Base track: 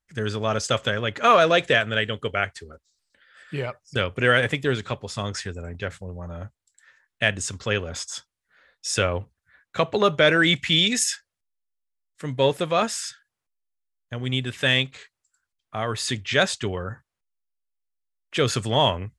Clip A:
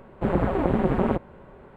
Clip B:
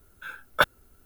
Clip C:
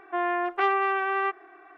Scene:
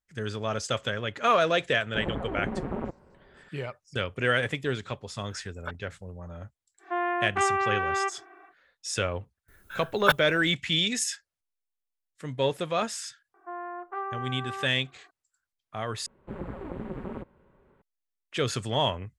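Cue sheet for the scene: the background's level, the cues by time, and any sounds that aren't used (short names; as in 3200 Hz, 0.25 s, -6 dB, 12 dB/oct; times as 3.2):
base track -6 dB
1.73 add A -10 dB + high shelf 3800 Hz -7.5 dB
5.07 add B -16.5 dB + treble ducked by the level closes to 2600 Hz, closed at -23.5 dBFS
6.78 add C -1.5 dB, fades 0.10 s
9.48 add B -0.5 dB
13.34 add C -12 dB + resonant high shelf 1900 Hz -12.5 dB, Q 1.5
16.06 replace with A -14 dB + bell 710 Hz -6.5 dB 0.37 oct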